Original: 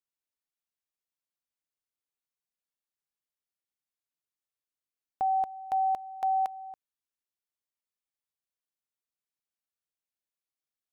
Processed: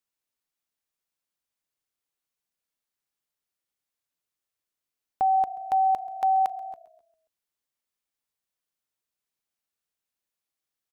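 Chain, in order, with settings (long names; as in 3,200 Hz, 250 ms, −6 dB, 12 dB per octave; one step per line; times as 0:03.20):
echo with shifted repeats 133 ms, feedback 50%, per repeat −31 Hz, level −21 dB
level +5 dB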